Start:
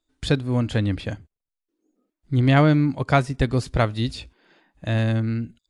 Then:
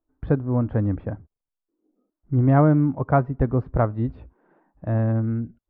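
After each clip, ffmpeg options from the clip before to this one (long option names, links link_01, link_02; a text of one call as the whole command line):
ffmpeg -i in.wav -af "lowpass=frequency=1200:width=0.5412,lowpass=frequency=1200:width=1.3066,aemphasis=mode=production:type=75kf" out.wav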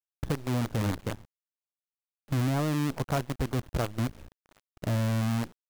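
ffmpeg -i in.wav -filter_complex "[0:a]asplit=2[link_01][link_02];[link_02]alimiter=limit=-15.5dB:level=0:latency=1:release=330,volume=-1dB[link_03];[link_01][link_03]amix=inputs=2:normalize=0,acompressor=threshold=-28dB:ratio=2,acrusher=bits=5:dc=4:mix=0:aa=0.000001,volume=-4.5dB" out.wav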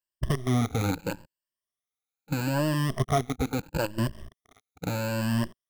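ffmpeg -i in.wav -af "afftfilt=real='re*pow(10,17/40*sin(2*PI*(1.3*log(max(b,1)*sr/1024/100)/log(2)-(0.76)*(pts-256)/sr)))':imag='im*pow(10,17/40*sin(2*PI*(1.3*log(max(b,1)*sr/1024/100)/log(2)-(0.76)*(pts-256)/sr)))':win_size=1024:overlap=0.75" out.wav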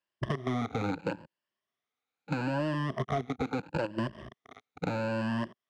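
ffmpeg -i in.wav -filter_complex "[0:a]highpass=140,lowpass=3100,asoftclip=type=tanh:threshold=-16dB,acrossover=split=600|1300[link_01][link_02][link_03];[link_01]acompressor=threshold=-41dB:ratio=4[link_04];[link_02]acompressor=threshold=-48dB:ratio=4[link_05];[link_03]acompressor=threshold=-52dB:ratio=4[link_06];[link_04][link_05][link_06]amix=inputs=3:normalize=0,volume=8.5dB" out.wav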